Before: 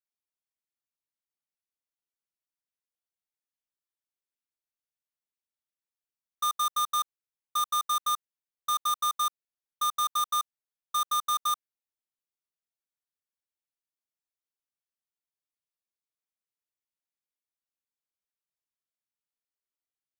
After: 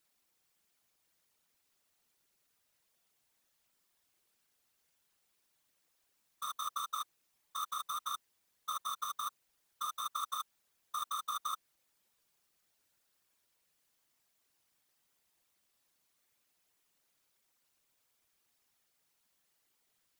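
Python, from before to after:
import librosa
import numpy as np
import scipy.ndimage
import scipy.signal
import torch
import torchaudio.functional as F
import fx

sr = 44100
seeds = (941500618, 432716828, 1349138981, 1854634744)

y = fx.over_compress(x, sr, threshold_db=-40.0, ratio=-1.0)
y = y + 0.5 * np.pad(y, (int(5.6 * sr / 1000.0), 0))[:len(y)]
y = fx.whisperise(y, sr, seeds[0])
y = y * librosa.db_to_amplitude(2.0)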